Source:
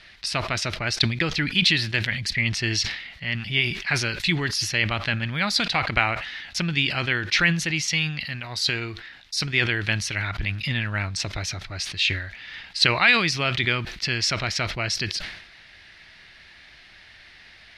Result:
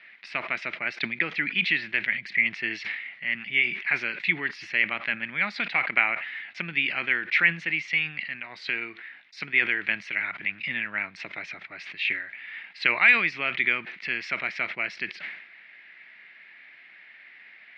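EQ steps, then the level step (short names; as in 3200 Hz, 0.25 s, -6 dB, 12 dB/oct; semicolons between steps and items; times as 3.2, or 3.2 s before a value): HPF 190 Hz 24 dB/oct; synth low-pass 2200 Hz, resonance Q 3.6; -8.0 dB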